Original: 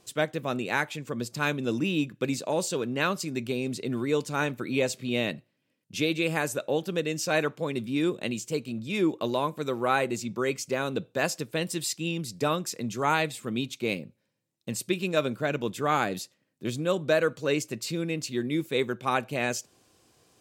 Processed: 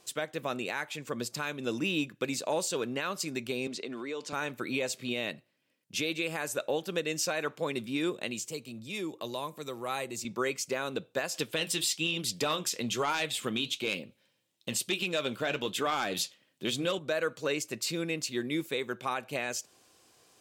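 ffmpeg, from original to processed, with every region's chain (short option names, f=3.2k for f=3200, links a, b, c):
-filter_complex "[0:a]asettb=1/sr,asplit=3[a][b][c];[a]atrim=end=3.674[d];[b]atrim=start=3.67:end=4.33,asetpts=PTS-STARTPTS,afade=t=in:d=0.004:c=qsin,afade=t=out:st=0.656:d=0.004:c=qsin,acrossover=split=190 7100:gain=0.126 1 0.141[e][f][g];[e][f][g]amix=inputs=3:normalize=0,acompressor=threshold=-32dB:ratio=5:attack=3.2:release=140:knee=1:detection=peak[h];[c]atrim=start=4.326[i];[d][h]acrossfade=d=0.004:c1=hsin:c2=qsin[j];[j][i]acrossfade=d=0.004:c1=qsin:c2=hsin,asettb=1/sr,asplit=3[k][l][m];[k]atrim=end=8.474[n];[l]atrim=start=8.47:end=10.25,asetpts=PTS-STARTPTS,afade=t=in:d=0.004:c=qsin,afade=t=out:st=1.776:d=0.004:c=qsin,equalizer=f=3.4k:t=o:w=2.4:g=-3.5,bandreject=f=1.5k:w=12,acrossover=split=120|3000[o][p][q];[p]acompressor=threshold=-47dB:ratio=1.5:attack=3.2:release=140:knee=2.83:detection=peak[r];[o][r][q]amix=inputs=3:normalize=0[s];[m]atrim=start=10.246[t];[n][s]acrossfade=d=0.004:c1=hsin:c2=qsin[u];[u][t]acrossfade=d=0.004:c1=qsin:c2=hsin,asettb=1/sr,asplit=3[v][w][x];[v]atrim=end=11.344[y];[w]atrim=start=11.34:end=16.99,asetpts=PTS-STARTPTS,afade=t=in:d=0.004:c=qsin,afade=t=out:st=5.646:d=0.004:c=qsin,equalizer=f=3.2k:t=o:w=0.55:g=9,aeval=exprs='0.376*sin(PI/2*1.78*val(0)/0.376)':c=same,flanger=delay=2.7:depth=8.1:regen=-66:speed=1.1:shape=triangular[z];[x]atrim=start=16.986[aa];[y][z]acrossfade=d=0.004:c1=hsin:c2=qsin[ab];[ab][aa]acrossfade=d=0.004:c1=qsin:c2=hsin,lowshelf=f=320:g=-10.5,alimiter=limit=-22dB:level=0:latency=1:release=211,volume=2dB"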